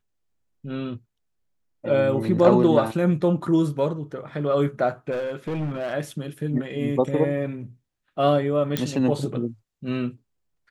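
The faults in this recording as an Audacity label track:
5.110000	5.940000	clipped -24 dBFS
8.770000	8.770000	pop -8 dBFS

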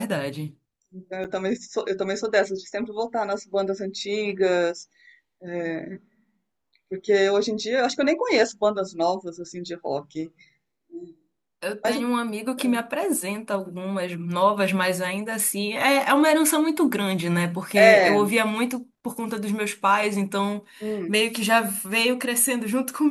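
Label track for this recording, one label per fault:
1.240000	1.250000	dropout 8 ms

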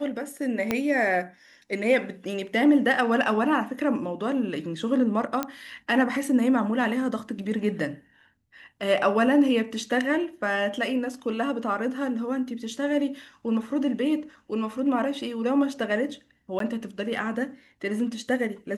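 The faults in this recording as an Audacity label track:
0.710000	0.710000	pop -10 dBFS
5.430000	5.430000	pop -12 dBFS
16.590000	16.600000	dropout 13 ms

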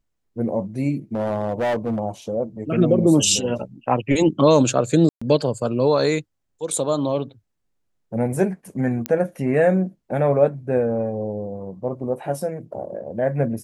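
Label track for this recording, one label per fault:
1.150000	2.000000	clipped -18.5 dBFS
5.090000	5.210000	dropout 125 ms
9.060000	9.060000	pop -8 dBFS

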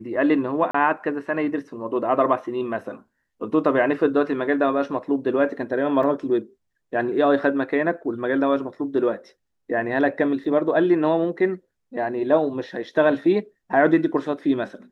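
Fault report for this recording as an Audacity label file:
0.710000	0.740000	dropout 34 ms
6.030000	6.030000	dropout 3.3 ms
10.440000	10.440000	dropout 3.3 ms

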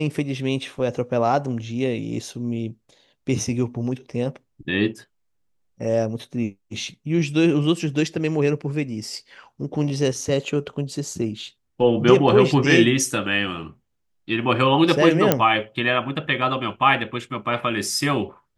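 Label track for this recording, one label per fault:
15.320000	15.320000	pop -1 dBFS

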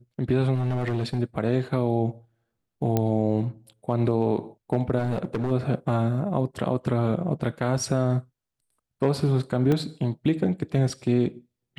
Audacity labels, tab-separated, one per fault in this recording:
0.540000	1.200000	clipped -21.5 dBFS
2.970000	2.970000	pop -10 dBFS
4.990000	5.520000	clipped -21.5 dBFS
9.720000	9.720000	dropout 2.2 ms

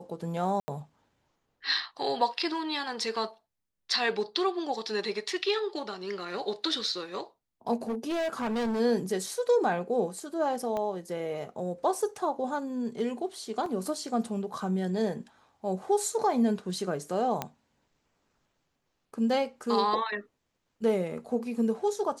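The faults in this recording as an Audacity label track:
0.600000	0.680000	dropout 80 ms
7.830000	8.810000	clipped -27 dBFS
10.770000	10.770000	pop -21 dBFS
13.660000	13.660000	dropout 2.5 ms
17.420000	17.420000	pop -15 dBFS

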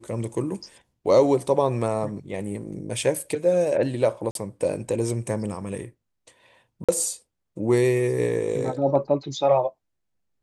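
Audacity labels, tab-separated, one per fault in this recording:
4.310000	4.350000	dropout 42 ms
6.840000	6.890000	dropout 46 ms

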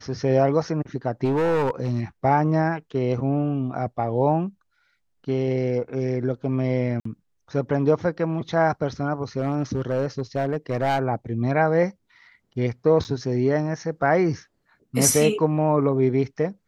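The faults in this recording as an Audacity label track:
1.240000	2.010000	clipped -18 dBFS
7.000000	7.050000	dropout 54 ms
9.380000	10.990000	clipped -17.5 dBFS
13.040000	13.050000	dropout 8.9 ms

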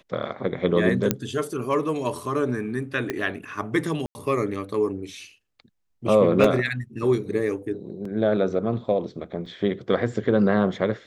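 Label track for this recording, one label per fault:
1.110000	1.110000	pop -5 dBFS
3.100000	3.100000	pop -12 dBFS
4.060000	4.150000	dropout 90 ms
6.440000	6.440000	dropout 4 ms
8.050000	8.050000	dropout 3.8 ms
9.460000	9.460000	dropout 3.5 ms

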